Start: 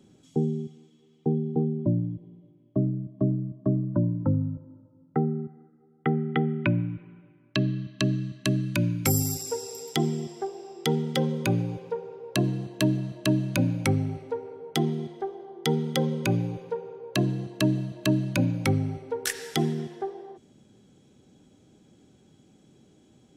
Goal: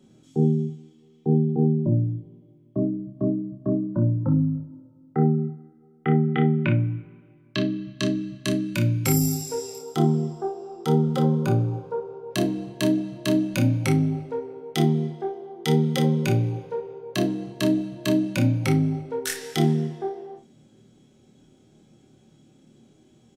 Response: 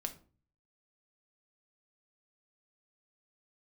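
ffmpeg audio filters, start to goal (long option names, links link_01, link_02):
-filter_complex "[0:a]asettb=1/sr,asplit=3[link_01][link_02][link_03];[link_01]atrim=end=9.784[link_04];[link_02]atrim=start=9.78:end=12.31,asetpts=PTS-STARTPTS,afade=type=in:duration=0.004:curve=qsin,afade=type=out:start_time=2.526:duration=0.004:curve=qsin,highshelf=frequency=1600:width_type=q:width=3:gain=-6.5[link_05];[link_03]atrim=start=12.306[link_06];[link_04][link_05]acrossfade=duration=0.004:curve1=hsin:curve2=qsin[link_07];[link_07][link_06]acrossfade=duration=0.004:curve1=qsin:curve2=hsin,aecho=1:1:26|58:0.708|0.282[link_08];[1:a]atrim=start_sample=2205,atrim=end_sample=3528[link_09];[link_08][link_09]afir=irnorm=-1:irlink=0"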